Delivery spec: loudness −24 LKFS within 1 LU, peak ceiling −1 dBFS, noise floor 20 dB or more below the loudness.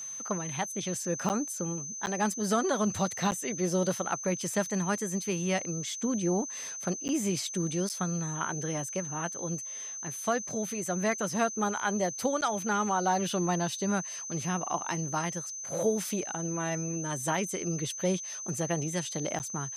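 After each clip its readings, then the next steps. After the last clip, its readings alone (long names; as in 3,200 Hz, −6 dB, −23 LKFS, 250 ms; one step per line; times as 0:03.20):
number of dropouts 7; longest dropout 9.3 ms; interfering tone 6,200 Hz; level of the tone −37 dBFS; integrated loudness −31.0 LKFS; sample peak −15.5 dBFS; target loudness −24.0 LKFS
→ repair the gap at 0:01.29/0:02.06/0:03.31/0:07.08/0:07.89/0:12.41/0:19.39, 9.3 ms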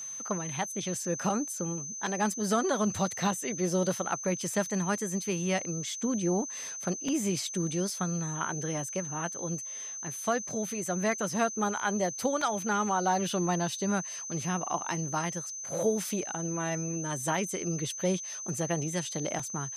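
number of dropouts 0; interfering tone 6,200 Hz; level of the tone −37 dBFS
→ notch filter 6,200 Hz, Q 30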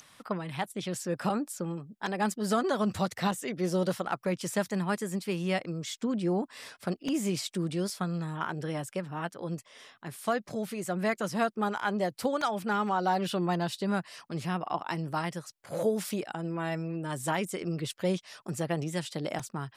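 interfering tone none found; integrated loudness −32.0 LKFS; sample peak −16.5 dBFS; target loudness −24.0 LKFS
→ level +8 dB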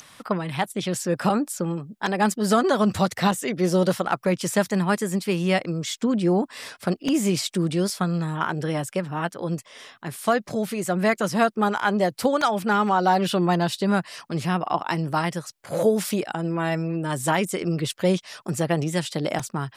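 integrated loudness −24.0 LKFS; sample peak −8.5 dBFS; background noise floor −54 dBFS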